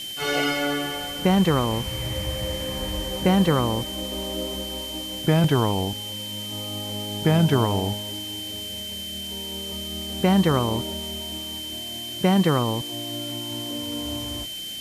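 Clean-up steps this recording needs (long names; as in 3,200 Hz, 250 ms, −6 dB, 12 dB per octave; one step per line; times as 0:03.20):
notch filter 3,100 Hz, Q 30
noise reduction from a noise print 30 dB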